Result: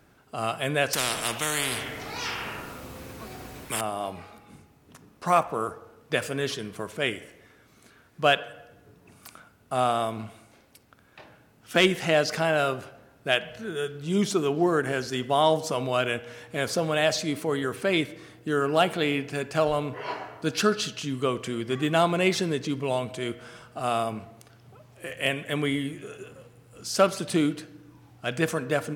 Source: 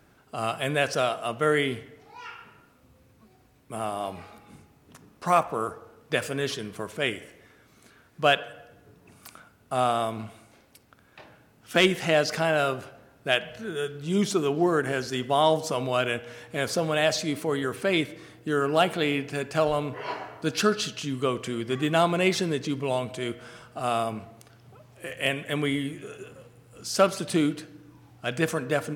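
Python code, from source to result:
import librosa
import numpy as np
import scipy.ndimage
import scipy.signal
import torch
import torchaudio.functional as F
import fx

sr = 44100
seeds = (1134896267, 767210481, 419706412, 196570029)

y = fx.spectral_comp(x, sr, ratio=4.0, at=(0.93, 3.81))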